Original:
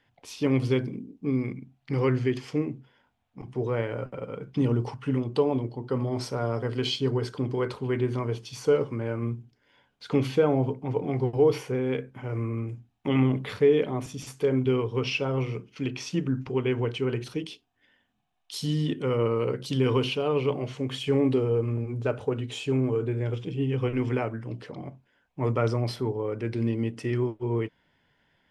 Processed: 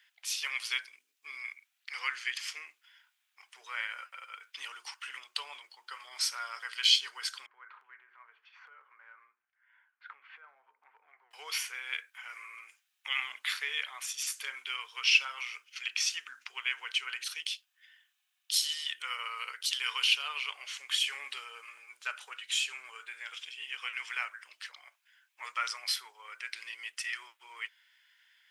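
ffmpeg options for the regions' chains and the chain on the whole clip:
-filter_complex "[0:a]asettb=1/sr,asplit=3[a][b][c];[a]atrim=end=7.464[d];[b]atrim=start=7.46:end=11.31,asetpts=PTS-STARTPTS,afade=t=in:d=0.004:c=qsin,afade=t=out:st=3.846:d=0.004:c=qsin,lowpass=f=1.7k:w=0.5412,lowpass=f=1.7k:w=1.3066,acompressor=threshold=-37dB:ratio=5:attack=3.2:release=140:knee=1:detection=peak[e];[c]atrim=start=11.306[f];[d][e]acrossfade=d=0.004:c1=hsin:c2=qsin[g];[g][f]acrossfade=d=0.004:c1=qsin:c2=hsin,highpass=f=1.5k:w=0.5412,highpass=f=1.5k:w=1.3066,highshelf=f=5.6k:g=7.5,volume=5dB"

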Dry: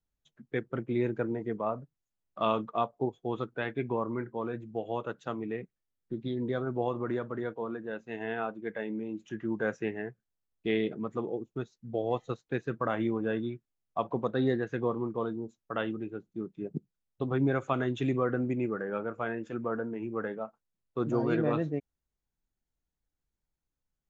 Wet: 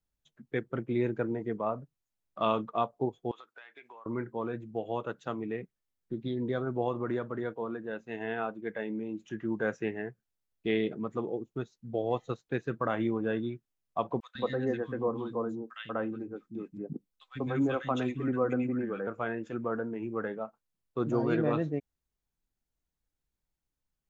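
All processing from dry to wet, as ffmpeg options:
-filter_complex "[0:a]asettb=1/sr,asplit=3[a][b][c];[a]atrim=end=3.314[d];[b]atrim=start=3.31:end=4.06,asetpts=PTS-STARTPTS,afade=t=in:d=0.004:c=qsin,afade=t=out:st=0.746:d=0.004:c=qsin,highpass=1.1k,acompressor=threshold=-46dB:ratio=10:attack=3.2:release=140:knee=1:detection=peak[e];[c]atrim=start=4.056[f];[d][e]acrossfade=d=0.004:c1=hsin:c2=qsin[g];[g][f]acrossfade=d=0.004:c1=qsin:c2=hsin,asettb=1/sr,asplit=3[h][i][j];[h]atrim=end=14.204[k];[i]atrim=start=14.2:end=19.07,asetpts=PTS-STARTPTS,afade=t=in:d=0.004:c=qsin,afade=t=out:st=4.866:d=0.004:c=qsin,aecho=1:1:3.9:0.32,atrim=end_sample=214767,acrossover=split=230|1700[l][m][n];[l]adelay=150[o];[m]adelay=190[p];[o][p][n]amix=inputs=3:normalize=0,atrim=end_sample=214767[q];[j]atrim=start=19.066[r];[k][q]acrossfade=d=0.004:c1=hsin:c2=qsin[s];[s][r]acrossfade=d=0.004:c1=qsin:c2=hsin"

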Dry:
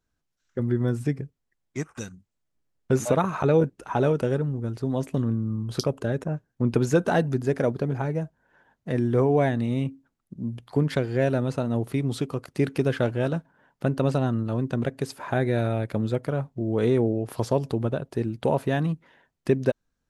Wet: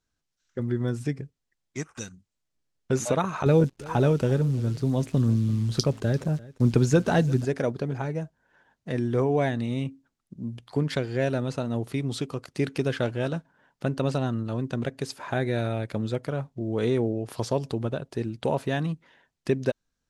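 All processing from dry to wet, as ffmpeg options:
-filter_complex "[0:a]asettb=1/sr,asplit=3[a][b][c];[a]atrim=end=3.464[d];[b]atrim=start=3.46:end=7.45,asetpts=PTS-STARTPTS,afade=t=in:d=0.004:c=qsin,afade=t=out:st=3.986:d=0.004:c=qsin,lowshelf=f=200:g=10,acrusher=bits=9:dc=4:mix=0:aa=0.000001,aecho=1:1:344:0.0944,atrim=end_sample=175959[e];[c]atrim=start=7.446[f];[d][e]acrossfade=d=0.004:c1=hsin:c2=qsin[g];[g][f]acrossfade=d=0.004:c1=qsin:c2=hsin,lowpass=5.7k,aemphasis=mode=production:type=75kf,volume=-3dB"

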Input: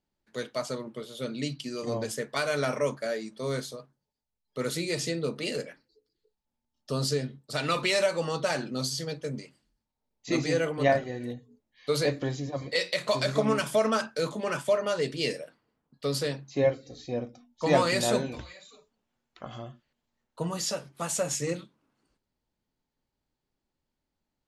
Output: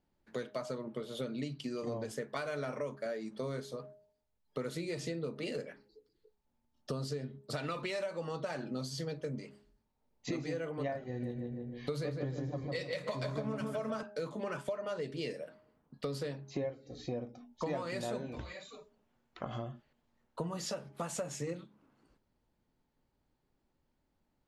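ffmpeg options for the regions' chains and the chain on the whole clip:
-filter_complex "[0:a]asettb=1/sr,asplit=3[a][b][c];[a]atrim=end=11.074[d];[b]atrim=start=11.07:end=14.03,asetpts=PTS-STARTPTS,afade=t=in:d=0.004:c=qsin,afade=t=out:st=2.956:d=0.004:c=qsin,bass=f=250:g=6,treble=f=4k:g=2,asplit=2[e][f];[f]adelay=154,lowpass=f=2.1k:p=1,volume=-4dB,asplit=2[g][h];[h]adelay=154,lowpass=f=2.1k:p=1,volume=0.43,asplit=2[i][j];[j]adelay=154,lowpass=f=2.1k:p=1,volume=0.43,asplit=2[k][l];[l]adelay=154,lowpass=f=2.1k:p=1,volume=0.43,asplit=2[m][n];[n]adelay=154,lowpass=f=2.1k:p=1,volume=0.43[o];[e][g][i][k][m][o]amix=inputs=6:normalize=0,atrim=end_sample=130536[p];[c]atrim=start=14.026[q];[d][p]acrossfade=d=0.004:c1=hsin:c2=qsin[r];[r][q]acrossfade=d=0.004:c1=qsin:c2=hsin,highshelf=f=2.8k:g=-10.5,bandreject=f=206.3:t=h:w=4,bandreject=f=412.6:t=h:w=4,bandreject=f=618.9:t=h:w=4,bandreject=f=825.2:t=h:w=4,acompressor=threshold=-42dB:ratio=6,volume=6dB"

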